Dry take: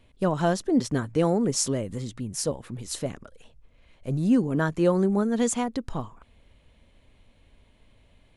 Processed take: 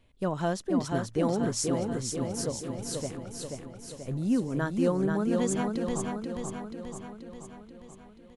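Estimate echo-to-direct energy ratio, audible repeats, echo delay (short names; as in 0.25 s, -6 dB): -2.0 dB, 7, 0.483 s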